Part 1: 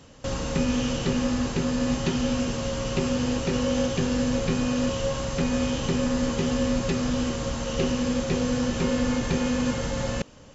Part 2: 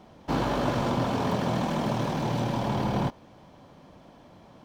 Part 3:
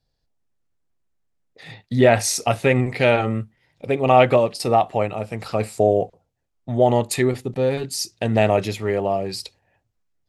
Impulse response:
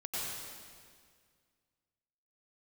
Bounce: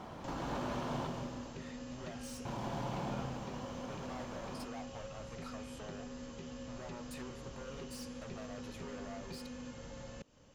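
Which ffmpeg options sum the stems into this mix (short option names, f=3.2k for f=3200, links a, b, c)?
-filter_complex "[0:a]acrossover=split=270|830|3600[a][b][c][d];[a]acompressor=threshold=-36dB:ratio=4[e];[b]acompressor=threshold=-38dB:ratio=4[f];[c]acompressor=threshold=-45dB:ratio=4[g];[d]acompressor=threshold=-48dB:ratio=4[h];[e][f][g][h]amix=inputs=4:normalize=0,volume=-13.5dB[i];[1:a]acompressor=threshold=-35dB:ratio=6,volume=0.5dB,asplit=3[j][k][l];[j]atrim=end=1.07,asetpts=PTS-STARTPTS,afade=t=out:st=1.066:d=0.004:c=hsin[m];[k]atrim=start=1.07:end=2.45,asetpts=PTS-STARTPTS,volume=0[n];[l]atrim=start=2.45,asetpts=PTS-STARTPTS,afade=t=in:d=0.004:c=hsin[o];[m][n][o]concat=n=3:v=0:a=1,asplit=2[p][q];[q]volume=-8dB[r];[2:a]bandreject=f=402.2:t=h:w=4,bandreject=f=804.4:t=h:w=4,bandreject=f=1.2066k:t=h:w=4,bandreject=f=1.6088k:t=h:w=4,bandreject=f=2.011k:t=h:w=4,bandreject=f=2.4132k:t=h:w=4,bandreject=f=2.8154k:t=h:w=4,bandreject=f=3.2176k:t=h:w=4,bandreject=f=3.6198k:t=h:w=4,bandreject=f=4.022k:t=h:w=4,bandreject=f=4.4242k:t=h:w=4,bandreject=f=4.8264k:t=h:w=4,bandreject=f=5.2286k:t=h:w=4,bandreject=f=5.6308k:t=h:w=4,bandreject=f=6.033k:t=h:w=4,bandreject=f=6.4352k:t=h:w=4,bandreject=f=6.8374k:t=h:w=4,bandreject=f=7.2396k:t=h:w=4,bandreject=f=7.6418k:t=h:w=4,bandreject=f=8.044k:t=h:w=4,bandreject=f=8.4462k:t=h:w=4,bandreject=f=8.8484k:t=h:w=4,bandreject=f=9.2506k:t=h:w=4,bandreject=f=9.6528k:t=h:w=4,bandreject=f=10.055k:t=h:w=4,bandreject=f=10.4572k:t=h:w=4,bandreject=f=10.8594k:t=h:w=4,bandreject=f=11.2616k:t=h:w=4,bandreject=f=11.6638k:t=h:w=4,bandreject=f=12.066k:t=h:w=4,bandreject=f=12.4682k:t=h:w=4,acompressor=threshold=-25dB:ratio=6,volume=30.5dB,asoftclip=hard,volume=-30.5dB,volume=-18dB[s];[p][s]amix=inputs=2:normalize=0,equalizer=f=1.2k:w=1.1:g=7.5,alimiter=level_in=13.5dB:limit=-24dB:level=0:latency=1,volume=-13.5dB,volume=0dB[t];[3:a]atrim=start_sample=2205[u];[r][u]afir=irnorm=-1:irlink=0[v];[i][t][v]amix=inputs=3:normalize=0"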